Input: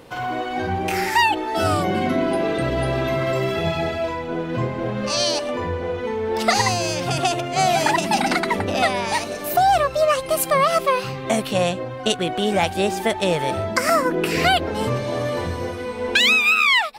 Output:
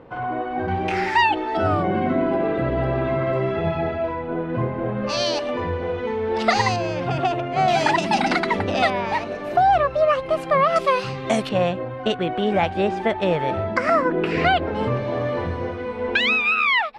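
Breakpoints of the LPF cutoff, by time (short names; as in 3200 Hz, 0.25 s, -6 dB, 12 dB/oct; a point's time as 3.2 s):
1500 Hz
from 0.68 s 3400 Hz
from 1.57 s 1800 Hz
from 5.09 s 3900 Hz
from 6.76 s 2100 Hz
from 7.68 s 4700 Hz
from 8.9 s 2300 Hz
from 10.76 s 6200 Hz
from 11.49 s 2400 Hz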